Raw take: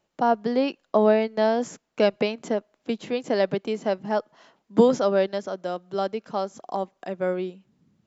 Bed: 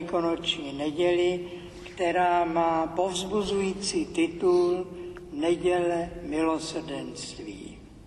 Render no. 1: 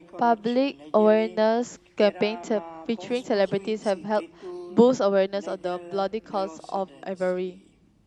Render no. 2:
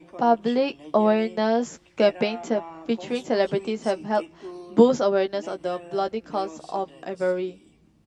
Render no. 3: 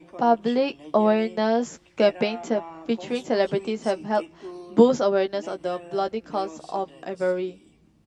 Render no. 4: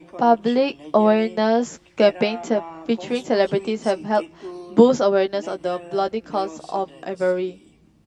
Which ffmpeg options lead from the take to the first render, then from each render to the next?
-filter_complex "[1:a]volume=-15.5dB[a];[0:a][a]amix=inputs=2:normalize=0"
-filter_complex "[0:a]asplit=2[a][b];[b]adelay=13,volume=-7dB[c];[a][c]amix=inputs=2:normalize=0"
-af anull
-af "volume=3.5dB,alimiter=limit=-1dB:level=0:latency=1"

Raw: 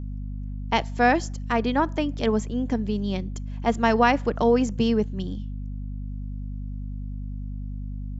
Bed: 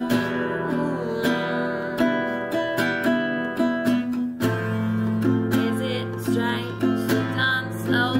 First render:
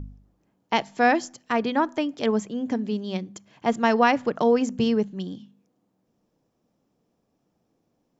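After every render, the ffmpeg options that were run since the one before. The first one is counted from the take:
-af "bandreject=f=50:t=h:w=4,bandreject=f=100:t=h:w=4,bandreject=f=150:t=h:w=4,bandreject=f=200:t=h:w=4,bandreject=f=250:t=h:w=4"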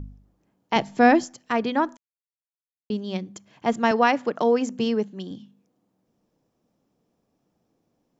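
-filter_complex "[0:a]asettb=1/sr,asplit=3[a][b][c];[a]atrim=end=0.764[d];[b]atrim=start=0.76:end=1.24,asetpts=PTS-STARTPTS,afade=t=in:d=0.004:c=qsin,afade=t=out:st=0.476:d=0.004:c=qsin,lowshelf=f=390:g=10[e];[c]atrim=start=1.236[f];[d][e]acrossfade=d=0.004:c1=hsin:c2=qsin[g];[g][f]acrossfade=d=0.004:c1=qsin:c2=hsin,asettb=1/sr,asplit=3[h][i][j];[h]atrim=end=3.914[k];[i]atrim=start=3.91:end=5.31,asetpts=PTS-STARTPTS,afade=t=in:d=0.004:c=qsin,afade=t=out:st=1.396:d=0.004:c=qsin,highpass=210[l];[j]atrim=start=5.306[m];[k][l]acrossfade=d=0.004:c1=hsin:c2=qsin[n];[n][m]acrossfade=d=0.004:c1=qsin:c2=hsin,asplit=3[o][p][q];[o]atrim=end=1.97,asetpts=PTS-STARTPTS,afade=t=out:st=1.966:d=0.004:c=hsin[r];[p]atrim=start=1.97:end=2.9,asetpts=PTS-STARTPTS,volume=0[s];[q]atrim=start=2.9,asetpts=PTS-STARTPTS,afade=t=in:d=0.004:c=hsin[t];[r][s][t]concat=n=3:v=0:a=1"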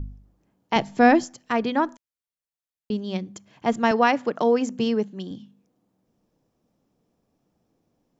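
-af "lowshelf=f=85:g=6.5"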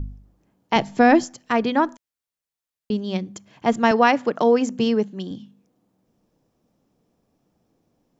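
-af "volume=3dB,alimiter=limit=-3dB:level=0:latency=1"

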